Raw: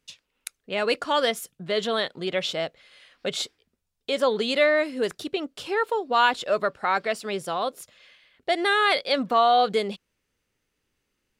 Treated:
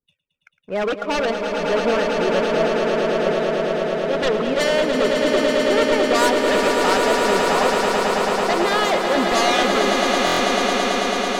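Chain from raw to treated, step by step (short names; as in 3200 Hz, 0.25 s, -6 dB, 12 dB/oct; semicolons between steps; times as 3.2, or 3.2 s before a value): LPF 1500 Hz 12 dB/oct; loudest bins only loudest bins 32; power-law curve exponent 1.4; in parallel at -7 dB: sine folder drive 17 dB, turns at -10.5 dBFS; on the sum: swelling echo 0.11 s, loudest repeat 8, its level -6.5 dB; stuck buffer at 10.25, samples 1024, times 5; gain -2 dB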